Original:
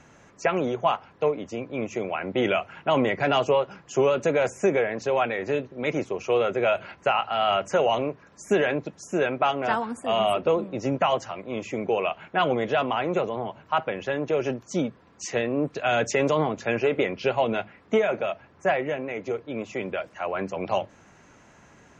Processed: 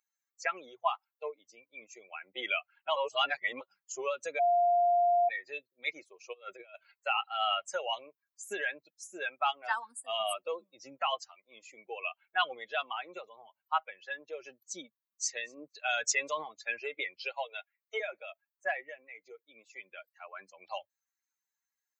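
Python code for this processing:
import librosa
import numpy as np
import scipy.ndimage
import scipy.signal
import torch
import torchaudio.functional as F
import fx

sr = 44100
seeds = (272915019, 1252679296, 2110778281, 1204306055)

y = fx.over_compress(x, sr, threshold_db=-26.0, ratio=-0.5, at=(6.32, 6.74), fade=0.02)
y = fx.echo_throw(y, sr, start_s=14.88, length_s=0.42, ms=240, feedback_pct=20, wet_db=-14.0)
y = fx.cheby1_highpass(y, sr, hz=430.0, order=3, at=(17.18, 18.0))
y = fx.edit(y, sr, fx.reverse_span(start_s=2.96, length_s=0.65),
    fx.bleep(start_s=4.39, length_s=0.9, hz=701.0, db=-16.0), tone=tone)
y = fx.bin_expand(y, sr, power=2.0)
y = scipy.signal.sosfilt(scipy.signal.butter(2, 950.0, 'highpass', fs=sr, output='sos'), y)
y = fx.high_shelf(y, sr, hz=4900.0, db=9.5)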